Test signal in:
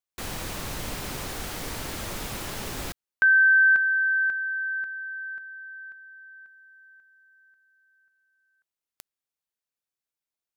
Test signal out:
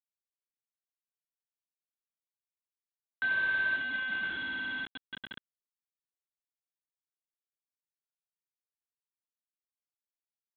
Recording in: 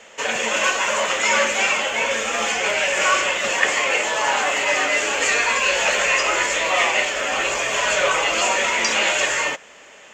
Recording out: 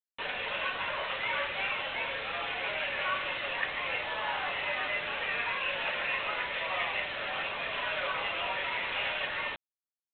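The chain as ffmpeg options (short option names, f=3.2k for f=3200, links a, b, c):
-af "flanger=delay=7.9:depth=7.4:regen=-75:speed=0.5:shape=sinusoidal,afftdn=nr=28:nf=-39,aeval=exprs='val(0)+0.00224*(sin(2*PI*60*n/s)+sin(2*PI*2*60*n/s)/2+sin(2*PI*3*60*n/s)/3+sin(2*PI*4*60*n/s)/4+sin(2*PI*5*60*n/s)/5)':c=same,acompressor=threshold=-30dB:ratio=1.5:attack=0.87:release=939:knee=6:detection=peak,highpass=560,aresample=8000,acrusher=bits=5:mix=0:aa=0.000001,aresample=44100,volume=-3.5dB"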